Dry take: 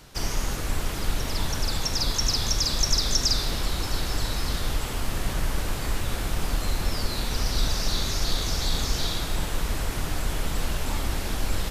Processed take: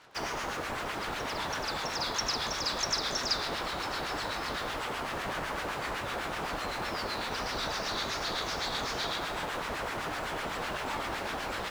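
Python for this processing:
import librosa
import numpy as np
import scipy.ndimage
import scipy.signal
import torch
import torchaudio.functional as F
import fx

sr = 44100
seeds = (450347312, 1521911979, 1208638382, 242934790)

p1 = fx.filter_lfo_bandpass(x, sr, shape='sine', hz=7.9, low_hz=710.0, high_hz=1700.0, q=0.82)
p2 = fx.quant_dither(p1, sr, seeds[0], bits=8, dither='none')
y = p1 + (p2 * librosa.db_to_amplitude(-6.0))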